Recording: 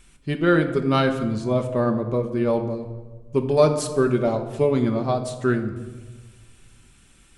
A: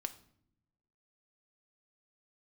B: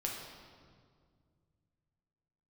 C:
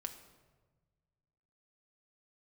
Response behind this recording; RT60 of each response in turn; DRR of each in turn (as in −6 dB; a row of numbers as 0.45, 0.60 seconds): C; 0.70, 2.0, 1.3 seconds; 7.5, −2.0, 4.5 decibels